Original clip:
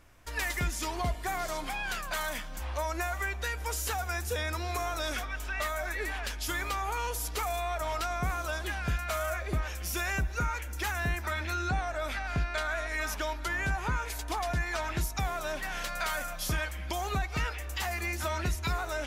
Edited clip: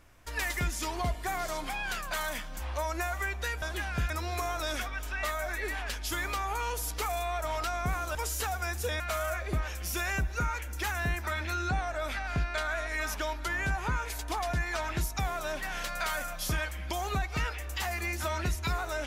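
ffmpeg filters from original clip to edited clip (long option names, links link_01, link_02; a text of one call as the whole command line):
ffmpeg -i in.wav -filter_complex "[0:a]asplit=5[link_01][link_02][link_03][link_04][link_05];[link_01]atrim=end=3.622[link_06];[link_02]atrim=start=8.518:end=9.002[link_07];[link_03]atrim=start=4.468:end=8.522[link_08];[link_04]atrim=start=3.618:end=4.472[link_09];[link_05]atrim=start=8.998[link_10];[link_06][link_07]acrossfade=duration=0.004:curve1=hsin:curve2=hsin[link_11];[link_11][link_08]acrossfade=duration=0.004:curve1=hsin:curve2=hsin[link_12];[link_12][link_09]acrossfade=duration=0.004:curve1=hsin:curve2=hsin[link_13];[link_13][link_10]acrossfade=duration=0.004:curve1=hsin:curve2=hsin" out.wav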